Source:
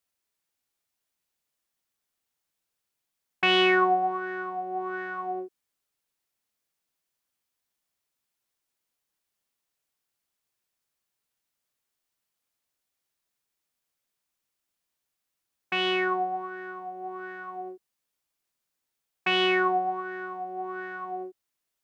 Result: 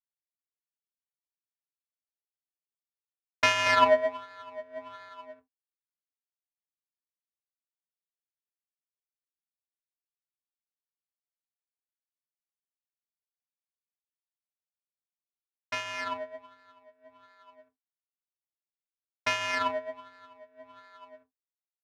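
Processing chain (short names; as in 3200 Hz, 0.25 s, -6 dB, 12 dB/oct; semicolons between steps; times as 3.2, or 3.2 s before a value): 3.66–5.09 small resonant body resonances 680/980 Hz, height 11 dB, ringing for 55 ms; mistuned SSB -110 Hz 560–2600 Hz; doubler 31 ms -13 dB; power-law curve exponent 2; gain +7 dB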